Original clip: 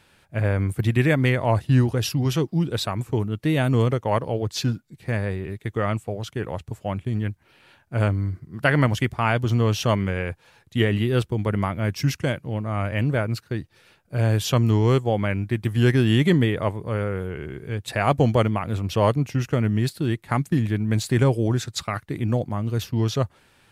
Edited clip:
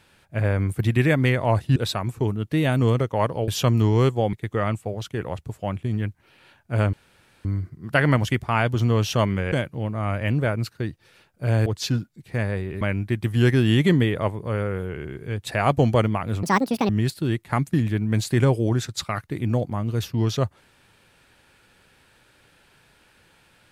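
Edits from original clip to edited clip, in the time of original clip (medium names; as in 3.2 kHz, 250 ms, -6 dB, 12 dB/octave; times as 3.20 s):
1.76–2.68 s: delete
4.40–5.55 s: swap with 14.37–15.22 s
8.15 s: insert room tone 0.52 s
10.22–12.23 s: delete
18.84–19.68 s: speed 182%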